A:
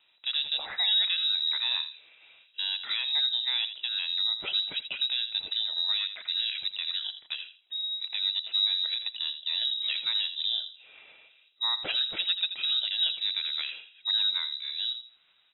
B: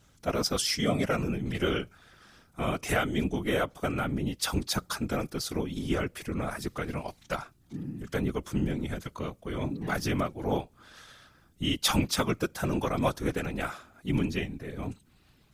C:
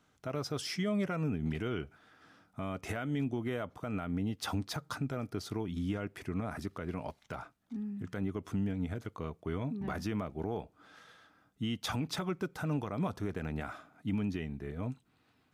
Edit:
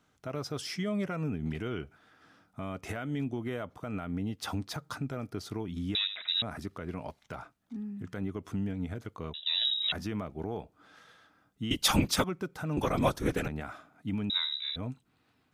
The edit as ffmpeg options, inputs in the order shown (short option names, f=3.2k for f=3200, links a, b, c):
-filter_complex "[0:a]asplit=3[a][b][c];[1:a]asplit=2[d][e];[2:a]asplit=6[f][g][h][i][j][k];[f]atrim=end=5.952[l];[a]atrim=start=5.948:end=6.422[m];[g]atrim=start=6.418:end=9.342[n];[b]atrim=start=9.338:end=9.922[o];[h]atrim=start=9.918:end=11.712[p];[d]atrim=start=11.708:end=12.242[q];[i]atrim=start=12.238:end=12.772[r];[e]atrim=start=12.768:end=13.482[s];[j]atrim=start=13.478:end=14.302[t];[c]atrim=start=14.298:end=14.762[u];[k]atrim=start=14.758[v];[l][m]acrossfade=d=0.004:c1=hsin:c2=hsin[w];[w][n]acrossfade=d=0.004:c1=hsin:c2=hsin[x];[x][o]acrossfade=d=0.004:c1=hsin:c2=hsin[y];[y][p]acrossfade=d=0.004:c1=hsin:c2=hsin[z];[z][q]acrossfade=d=0.004:c1=hsin:c2=hsin[aa];[aa][r]acrossfade=d=0.004:c1=hsin:c2=hsin[ab];[ab][s]acrossfade=d=0.004:c1=hsin:c2=hsin[ac];[ac][t]acrossfade=d=0.004:c1=hsin:c2=hsin[ad];[ad][u]acrossfade=d=0.004:c1=hsin:c2=hsin[ae];[ae][v]acrossfade=d=0.004:c1=hsin:c2=hsin"